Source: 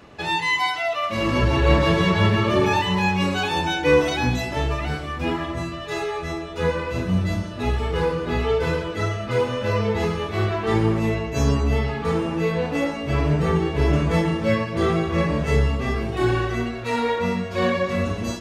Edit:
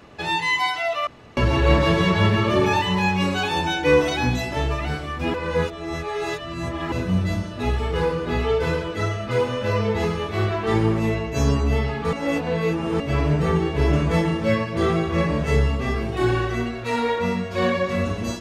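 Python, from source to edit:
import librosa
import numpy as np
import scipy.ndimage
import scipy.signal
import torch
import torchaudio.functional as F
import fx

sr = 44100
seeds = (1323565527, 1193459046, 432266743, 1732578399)

y = fx.edit(x, sr, fx.room_tone_fill(start_s=1.07, length_s=0.3),
    fx.reverse_span(start_s=5.34, length_s=1.58),
    fx.reverse_span(start_s=12.13, length_s=0.87), tone=tone)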